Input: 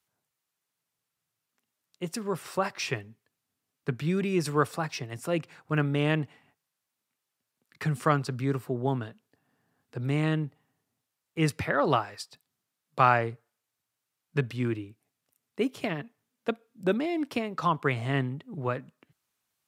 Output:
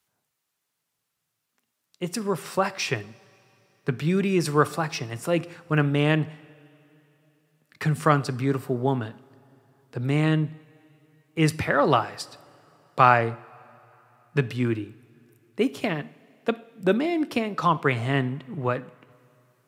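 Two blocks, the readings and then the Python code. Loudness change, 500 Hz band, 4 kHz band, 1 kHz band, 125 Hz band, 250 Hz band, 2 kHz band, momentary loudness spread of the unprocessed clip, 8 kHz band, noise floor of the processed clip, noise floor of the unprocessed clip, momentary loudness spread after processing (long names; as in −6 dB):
+4.5 dB, +4.5 dB, +4.5 dB, +5.0 dB, +4.5 dB, +4.5 dB, +4.5 dB, 12 LU, +4.5 dB, −80 dBFS, −85 dBFS, 12 LU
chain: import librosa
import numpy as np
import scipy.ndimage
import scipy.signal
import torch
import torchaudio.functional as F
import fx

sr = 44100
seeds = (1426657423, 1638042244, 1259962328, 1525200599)

y = fx.rev_double_slope(x, sr, seeds[0], early_s=0.56, late_s=3.4, knee_db=-16, drr_db=15.5)
y = y * librosa.db_to_amplitude(4.5)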